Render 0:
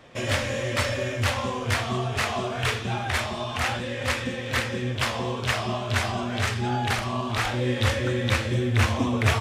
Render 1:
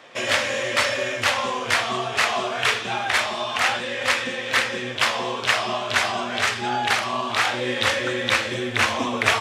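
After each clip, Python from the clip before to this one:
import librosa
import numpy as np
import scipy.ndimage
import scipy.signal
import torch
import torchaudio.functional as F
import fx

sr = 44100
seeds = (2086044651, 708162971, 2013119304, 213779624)

y = fx.weighting(x, sr, curve='A')
y = F.gain(torch.from_numpy(y), 5.5).numpy()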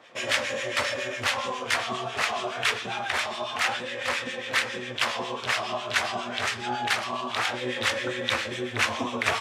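y = fx.harmonic_tremolo(x, sr, hz=7.3, depth_pct=70, crossover_hz=1200.0)
y = F.gain(torch.from_numpy(y), -2.0).numpy()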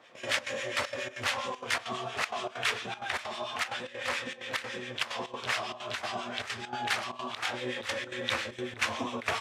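y = fx.step_gate(x, sr, bpm=194, pattern='xx.xx.xxx', floor_db=-12.0, edge_ms=4.5)
y = F.gain(torch.from_numpy(y), -4.5).numpy()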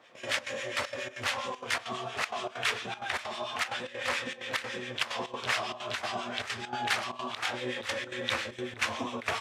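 y = fx.rider(x, sr, range_db=10, speed_s=2.0)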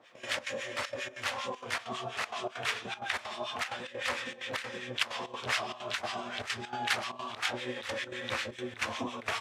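y = fx.harmonic_tremolo(x, sr, hz=5.3, depth_pct=70, crossover_hz=1000.0)
y = F.gain(torch.from_numpy(y), 1.5).numpy()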